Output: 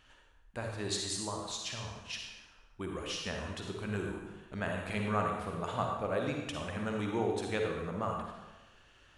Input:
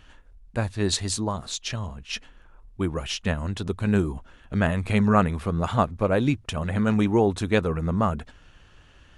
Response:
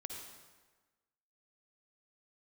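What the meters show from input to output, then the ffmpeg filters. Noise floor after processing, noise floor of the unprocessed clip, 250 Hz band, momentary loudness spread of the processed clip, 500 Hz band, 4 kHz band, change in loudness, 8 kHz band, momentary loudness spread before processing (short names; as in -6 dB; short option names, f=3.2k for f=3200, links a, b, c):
-62 dBFS, -53 dBFS, -14.0 dB, 11 LU, -9.5 dB, -7.0 dB, -11.0 dB, -7.5 dB, 11 LU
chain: -filter_complex "[0:a]lowshelf=f=290:g=-10,asplit=2[a][b];[b]acompressor=threshold=-35dB:ratio=6,volume=-1dB[c];[a][c]amix=inputs=2:normalize=0[d];[1:a]atrim=start_sample=2205,asetrate=52920,aresample=44100[e];[d][e]afir=irnorm=-1:irlink=0,volume=-5.5dB"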